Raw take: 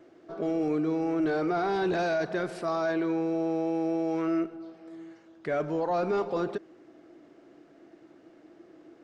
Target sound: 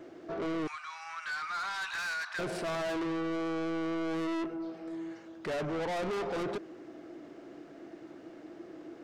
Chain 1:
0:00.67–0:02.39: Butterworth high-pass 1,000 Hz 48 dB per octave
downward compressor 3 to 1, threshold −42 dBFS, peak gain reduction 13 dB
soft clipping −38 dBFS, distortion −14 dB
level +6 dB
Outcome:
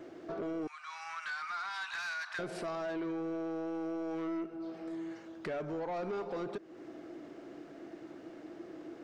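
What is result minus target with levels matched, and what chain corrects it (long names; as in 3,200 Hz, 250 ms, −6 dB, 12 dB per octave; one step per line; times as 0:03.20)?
downward compressor: peak gain reduction +13 dB
0:00.67–0:02.39: Butterworth high-pass 1,000 Hz 48 dB per octave
soft clipping −38 dBFS, distortion −5 dB
level +6 dB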